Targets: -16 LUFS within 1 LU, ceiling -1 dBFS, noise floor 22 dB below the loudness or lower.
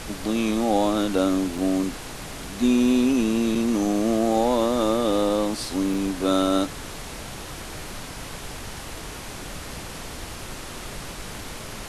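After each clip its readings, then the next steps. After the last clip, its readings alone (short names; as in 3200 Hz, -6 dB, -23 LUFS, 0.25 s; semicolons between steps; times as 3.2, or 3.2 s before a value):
dropouts 3; longest dropout 4.2 ms; noise floor -37 dBFS; noise floor target -45 dBFS; loudness -22.5 LUFS; peak -9.0 dBFS; loudness target -16.0 LUFS
-> interpolate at 1.58/3.55/5.94, 4.2 ms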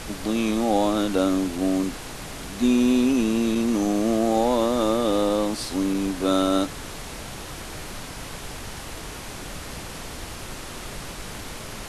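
dropouts 0; noise floor -37 dBFS; noise floor target -45 dBFS
-> noise print and reduce 8 dB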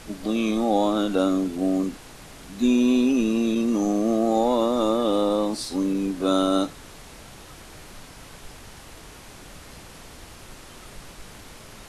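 noise floor -45 dBFS; loudness -23.0 LUFS; peak -9.0 dBFS; loudness target -16.0 LUFS
-> gain +7 dB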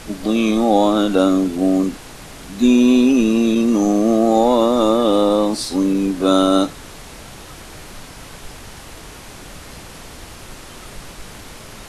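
loudness -16.0 LUFS; peak -2.0 dBFS; noise floor -38 dBFS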